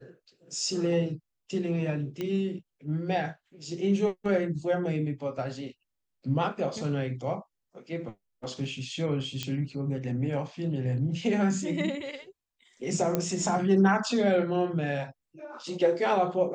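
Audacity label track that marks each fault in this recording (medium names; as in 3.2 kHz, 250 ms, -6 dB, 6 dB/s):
2.210000	2.210000	pop -20 dBFS
9.430000	9.430000	pop -17 dBFS
13.150000	13.150000	pop -12 dBFS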